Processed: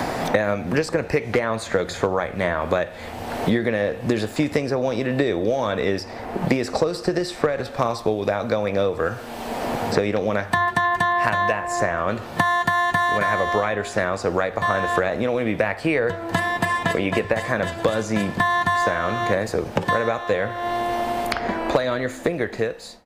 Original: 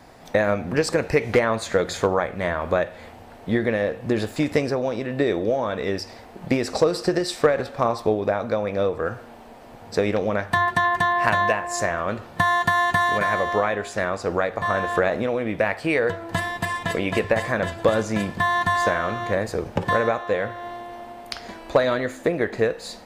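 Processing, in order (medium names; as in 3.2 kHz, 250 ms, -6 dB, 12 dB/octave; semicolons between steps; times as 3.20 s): fade out at the end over 1.18 s; three bands compressed up and down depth 100%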